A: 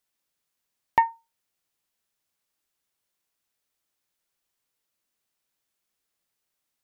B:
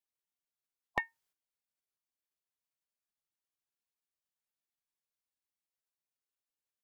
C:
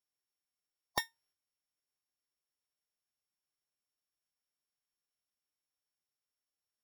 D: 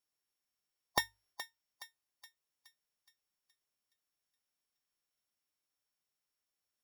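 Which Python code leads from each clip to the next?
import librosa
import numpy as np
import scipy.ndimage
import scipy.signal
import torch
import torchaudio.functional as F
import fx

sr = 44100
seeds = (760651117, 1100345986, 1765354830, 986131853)

y1 = fx.spec_gate(x, sr, threshold_db=-10, keep='weak')
y1 = F.gain(torch.from_numpy(y1), -4.5).numpy()
y2 = np.r_[np.sort(y1[:len(y1) // 8 * 8].reshape(-1, 8), axis=1).ravel(), y1[len(y1) // 8 * 8:]]
y2 = F.gain(torch.from_numpy(y2), -1.0).numpy()
y3 = fx.hum_notches(y2, sr, base_hz=50, count=2)
y3 = fx.echo_thinned(y3, sr, ms=420, feedback_pct=51, hz=1100.0, wet_db=-11.0)
y3 = F.gain(torch.from_numpy(y3), 2.5).numpy()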